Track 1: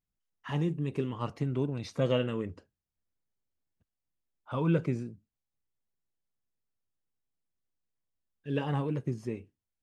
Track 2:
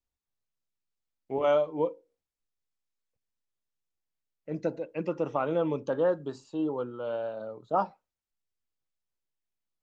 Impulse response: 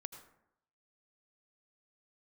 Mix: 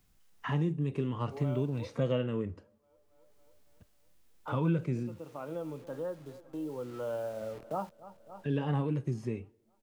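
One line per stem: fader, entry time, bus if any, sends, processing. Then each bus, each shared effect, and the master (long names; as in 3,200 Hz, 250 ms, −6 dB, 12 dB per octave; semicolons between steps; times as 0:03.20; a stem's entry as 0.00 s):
+1.0 dB, 0.00 s, send −20.5 dB, no echo send, no processing
0:06.59 −17.5 dB → 0:07.11 −7.5 dB, 0.00 s, no send, echo send −21 dB, bit-depth reduction 8 bits, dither none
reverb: on, RT60 0.80 s, pre-delay 72 ms
echo: repeating echo 278 ms, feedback 57%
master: harmonic and percussive parts rebalanced percussive −7 dB; multiband upward and downward compressor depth 70%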